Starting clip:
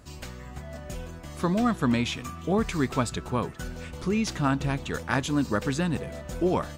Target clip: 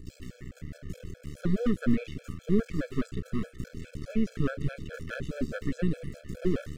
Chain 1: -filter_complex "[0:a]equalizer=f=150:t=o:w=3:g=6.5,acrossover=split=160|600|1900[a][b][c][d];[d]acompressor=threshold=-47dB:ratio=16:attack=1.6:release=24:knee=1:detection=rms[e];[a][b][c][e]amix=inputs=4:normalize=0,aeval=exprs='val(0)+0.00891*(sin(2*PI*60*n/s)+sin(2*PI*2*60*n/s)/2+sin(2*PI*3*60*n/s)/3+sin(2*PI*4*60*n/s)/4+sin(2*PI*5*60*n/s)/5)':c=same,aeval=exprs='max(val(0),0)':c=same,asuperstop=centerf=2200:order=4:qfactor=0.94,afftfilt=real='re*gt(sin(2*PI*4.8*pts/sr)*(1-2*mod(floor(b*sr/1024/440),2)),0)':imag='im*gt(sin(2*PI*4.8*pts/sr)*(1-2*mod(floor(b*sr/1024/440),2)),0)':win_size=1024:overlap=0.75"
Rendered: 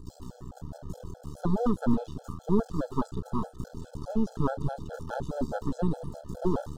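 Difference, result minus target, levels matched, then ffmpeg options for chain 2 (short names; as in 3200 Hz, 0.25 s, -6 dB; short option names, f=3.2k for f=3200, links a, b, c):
1000 Hz band +11.0 dB
-filter_complex "[0:a]equalizer=f=150:t=o:w=3:g=6.5,acrossover=split=160|600|1900[a][b][c][d];[d]acompressor=threshold=-47dB:ratio=16:attack=1.6:release=24:knee=1:detection=rms[e];[a][b][c][e]amix=inputs=4:normalize=0,aeval=exprs='val(0)+0.00891*(sin(2*PI*60*n/s)+sin(2*PI*2*60*n/s)/2+sin(2*PI*3*60*n/s)/3+sin(2*PI*4*60*n/s)/4+sin(2*PI*5*60*n/s)/5)':c=same,aeval=exprs='max(val(0),0)':c=same,asuperstop=centerf=870:order=4:qfactor=0.94,afftfilt=real='re*gt(sin(2*PI*4.8*pts/sr)*(1-2*mod(floor(b*sr/1024/440),2)),0)':imag='im*gt(sin(2*PI*4.8*pts/sr)*(1-2*mod(floor(b*sr/1024/440),2)),0)':win_size=1024:overlap=0.75"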